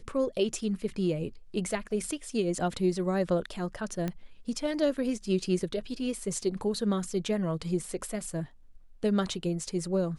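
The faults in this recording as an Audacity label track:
4.080000	4.080000	pop -19 dBFS

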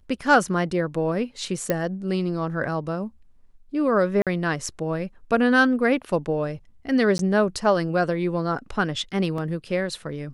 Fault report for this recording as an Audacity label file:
1.700000	1.700000	pop -9 dBFS
4.220000	4.270000	dropout 47 ms
7.180000	7.190000	dropout 12 ms
9.380000	9.380000	dropout 3 ms

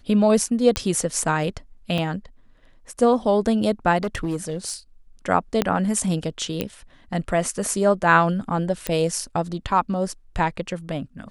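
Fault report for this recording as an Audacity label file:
0.760000	0.760000	pop -7 dBFS
1.980000	1.980000	dropout 3.6 ms
4.030000	4.740000	clipped -20.5 dBFS
5.620000	5.620000	pop -6 dBFS
6.610000	6.610000	pop -10 dBFS
8.870000	8.870000	pop -9 dBFS

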